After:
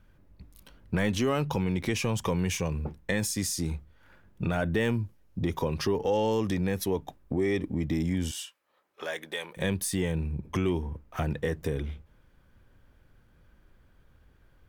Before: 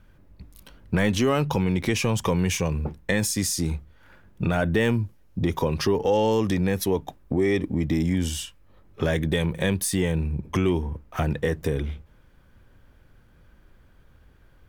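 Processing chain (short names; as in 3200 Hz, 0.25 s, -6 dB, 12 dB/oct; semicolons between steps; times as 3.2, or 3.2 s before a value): 8.31–9.57 HPF 650 Hz 12 dB/oct; gain -5 dB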